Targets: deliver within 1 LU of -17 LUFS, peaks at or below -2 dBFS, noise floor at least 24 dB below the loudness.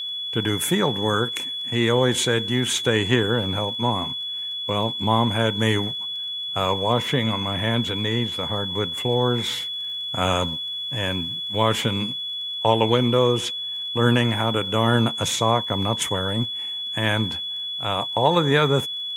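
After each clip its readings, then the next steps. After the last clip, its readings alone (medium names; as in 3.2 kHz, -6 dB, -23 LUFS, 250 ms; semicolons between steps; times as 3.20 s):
tick rate 24 per s; steady tone 3.4 kHz; tone level -27 dBFS; loudness -22.0 LUFS; peak level -4.5 dBFS; loudness target -17.0 LUFS
-> de-click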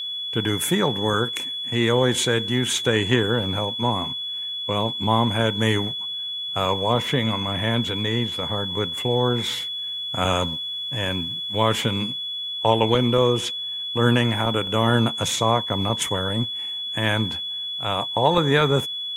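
tick rate 0.26 per s; steady tone 3.4 kHz; tone level -27 dBFS
-> band-stop 3.4 kHz, Q 30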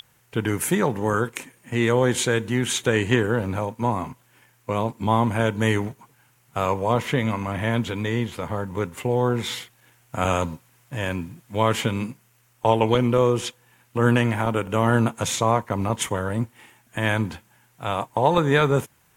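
steady tone not found; loudness -23.5 LUFS; peak level -5.0 dBFS; loudness target -17.0 LUFS
-> trim +6.5 dB; peak limiter -2 dBFS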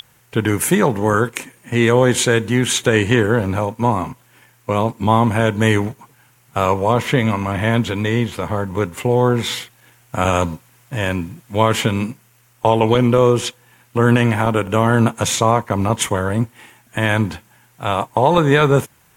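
loudness -17.5 LUFS; peak level -2.0 dBFS; noise floor -55 dBFS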